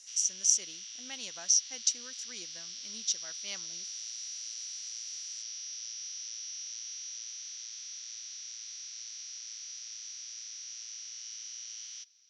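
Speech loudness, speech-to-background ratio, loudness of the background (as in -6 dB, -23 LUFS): -29.5 LUFS, 10.5 dB, -40.0 LUFS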